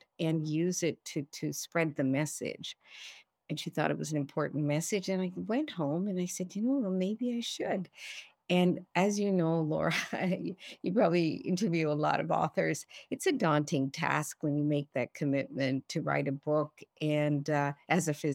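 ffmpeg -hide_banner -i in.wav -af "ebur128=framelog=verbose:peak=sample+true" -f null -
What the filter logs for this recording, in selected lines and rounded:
Integrated loudness:
  I:         -32.0 LUFS
  Threshold: -42.2 LUFS
Loudness range:
  LRA:         4.1 LU
  Threshold: -52.2 LUFS
  LRA low:   -34.6 LUFS
  LRA high:  -30.5 LUFS
Sample peak:
  Peak:      -12.1 dBFS
True peak:
  Peak:      -12.1 dBFS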